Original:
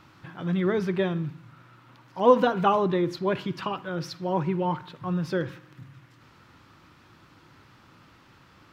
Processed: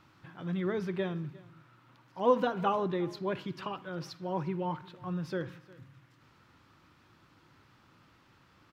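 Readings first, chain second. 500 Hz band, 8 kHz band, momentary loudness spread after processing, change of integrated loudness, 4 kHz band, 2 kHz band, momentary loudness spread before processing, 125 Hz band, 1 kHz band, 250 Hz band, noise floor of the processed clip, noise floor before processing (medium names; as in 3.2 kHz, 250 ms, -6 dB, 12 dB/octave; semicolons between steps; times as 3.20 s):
-7.5 dB, no reading, 16 LU, -7.5 dB, -7.5 dB, -7.5 dB, 13 LU, -7.5 dB, -7.5 dB, -7.5 dB, -64 dBFS, -56 dBFS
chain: delay 355 ms -22 dB; trim -7.5 dB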